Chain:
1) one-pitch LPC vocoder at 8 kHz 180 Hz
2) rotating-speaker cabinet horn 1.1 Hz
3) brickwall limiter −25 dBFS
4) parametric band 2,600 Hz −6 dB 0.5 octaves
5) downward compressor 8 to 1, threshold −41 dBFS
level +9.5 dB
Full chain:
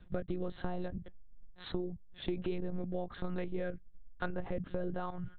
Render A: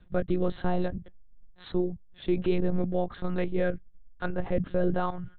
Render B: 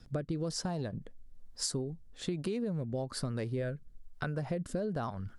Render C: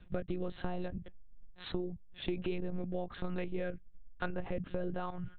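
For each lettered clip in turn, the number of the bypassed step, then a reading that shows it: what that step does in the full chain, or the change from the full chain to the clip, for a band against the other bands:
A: 5, average gain reduction 6.0 dB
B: 1, 4 kHz band +7.0 dB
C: 4, 4 kHz band +2.0 dB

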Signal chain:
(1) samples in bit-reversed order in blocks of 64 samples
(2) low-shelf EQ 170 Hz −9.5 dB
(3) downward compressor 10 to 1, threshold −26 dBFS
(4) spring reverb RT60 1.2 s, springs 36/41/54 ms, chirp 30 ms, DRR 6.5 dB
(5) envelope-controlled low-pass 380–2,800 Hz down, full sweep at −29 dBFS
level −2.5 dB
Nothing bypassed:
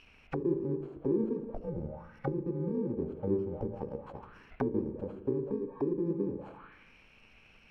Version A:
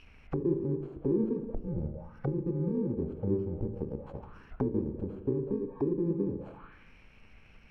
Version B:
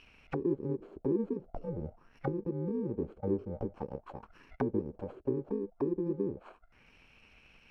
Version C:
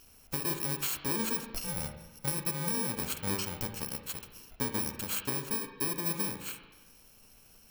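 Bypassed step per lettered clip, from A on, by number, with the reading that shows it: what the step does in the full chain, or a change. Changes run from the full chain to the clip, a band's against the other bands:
2, 1 kHz band −5.5 dB
4, change in momentary loudness spread −2 LU
5, 2 kHz band +16.5 dB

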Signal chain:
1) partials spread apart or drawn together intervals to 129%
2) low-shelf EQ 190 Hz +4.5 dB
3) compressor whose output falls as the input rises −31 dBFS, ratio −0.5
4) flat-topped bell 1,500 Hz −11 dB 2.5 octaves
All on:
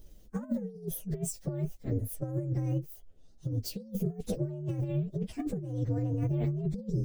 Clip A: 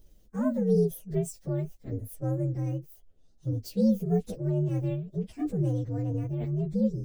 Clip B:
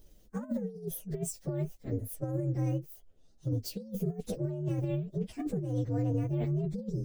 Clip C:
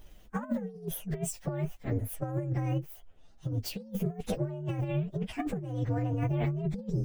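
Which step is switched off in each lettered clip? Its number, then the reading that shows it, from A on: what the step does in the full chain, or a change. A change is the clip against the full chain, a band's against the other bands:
3, change in momentary loudness spread +3 LU
2, 1 kHz band +3.0 dB
4, 1 kHz band +9.5 dB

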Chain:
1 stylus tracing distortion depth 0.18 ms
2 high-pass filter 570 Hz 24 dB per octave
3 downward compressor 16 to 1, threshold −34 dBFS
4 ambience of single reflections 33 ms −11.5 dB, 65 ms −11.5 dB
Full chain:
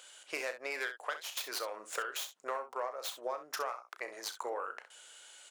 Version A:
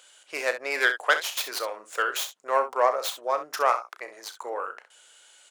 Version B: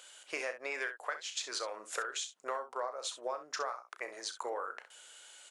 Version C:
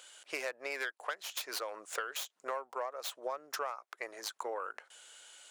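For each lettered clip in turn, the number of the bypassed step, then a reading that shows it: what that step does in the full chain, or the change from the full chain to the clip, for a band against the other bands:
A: 3, average gain reduction 8.5 dB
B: 1, change in crest factor −1.5 dB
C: 4, echo-to-direct ratio −8.5 dB to none audible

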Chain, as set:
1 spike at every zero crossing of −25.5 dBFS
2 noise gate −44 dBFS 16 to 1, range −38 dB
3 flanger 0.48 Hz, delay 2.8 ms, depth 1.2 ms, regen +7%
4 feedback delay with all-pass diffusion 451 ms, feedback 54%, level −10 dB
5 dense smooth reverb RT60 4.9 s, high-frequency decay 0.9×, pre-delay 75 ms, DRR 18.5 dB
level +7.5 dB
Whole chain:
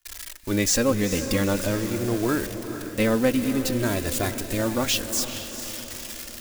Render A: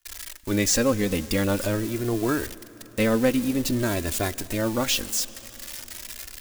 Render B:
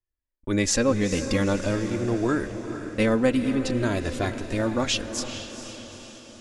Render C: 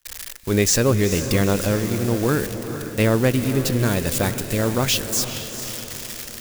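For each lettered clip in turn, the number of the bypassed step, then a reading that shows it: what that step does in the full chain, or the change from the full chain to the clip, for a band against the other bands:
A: 4, echo-to-direct ratio −8.0 dB to −18.5 dB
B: 1, distortion level −11 dB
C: 3, 125 Hz band +5.0 dB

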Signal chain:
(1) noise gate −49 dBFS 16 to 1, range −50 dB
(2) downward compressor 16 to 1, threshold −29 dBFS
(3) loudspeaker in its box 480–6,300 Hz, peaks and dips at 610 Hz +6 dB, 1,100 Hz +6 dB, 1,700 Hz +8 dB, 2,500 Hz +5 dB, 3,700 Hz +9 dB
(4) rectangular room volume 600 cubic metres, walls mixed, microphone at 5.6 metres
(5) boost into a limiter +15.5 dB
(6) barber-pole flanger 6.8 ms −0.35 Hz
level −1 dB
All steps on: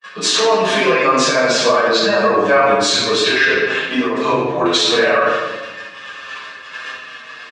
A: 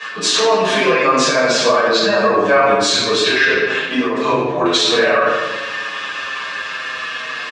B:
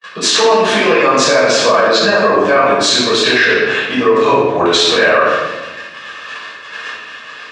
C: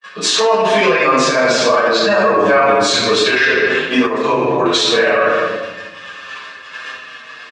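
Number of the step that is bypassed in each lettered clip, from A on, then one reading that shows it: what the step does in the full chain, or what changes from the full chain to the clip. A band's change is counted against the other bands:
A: 1, change in momentary loudness spread −7 LU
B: 6, change in crest factor −3.5 dB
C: 2, average gain reduction 6.0 dB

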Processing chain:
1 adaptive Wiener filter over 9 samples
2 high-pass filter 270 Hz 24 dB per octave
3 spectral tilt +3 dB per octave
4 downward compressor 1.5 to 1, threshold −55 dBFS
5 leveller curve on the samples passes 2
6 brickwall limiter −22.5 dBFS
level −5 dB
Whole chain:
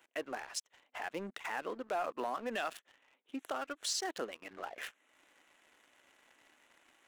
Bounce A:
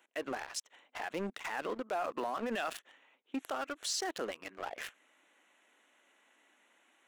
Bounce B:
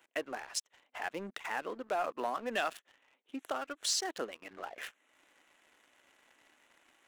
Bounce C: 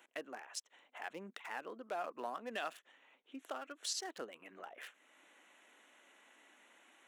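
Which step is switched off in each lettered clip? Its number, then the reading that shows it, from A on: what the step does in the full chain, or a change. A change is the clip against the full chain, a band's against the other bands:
4, average gain reduction 9.5 dB
6, change in crest factor +5.0 dB
5, change in crest factor +5.5 dB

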